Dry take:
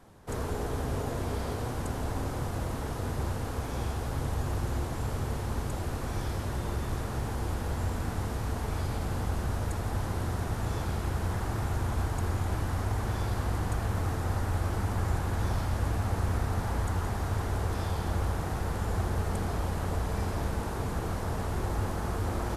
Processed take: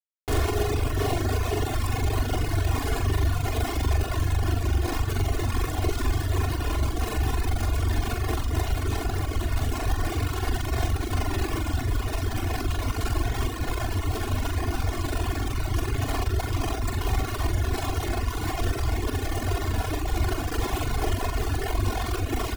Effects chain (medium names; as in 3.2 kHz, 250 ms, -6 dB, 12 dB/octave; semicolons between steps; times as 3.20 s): resonances exaggerated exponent 1.5; companded quantiser 2-bit; comb 2.8 ms, depth 91%; on a send: flutter echo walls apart 7.4 m, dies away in 0.57 s; on the sum: reverb removal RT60 1.5 s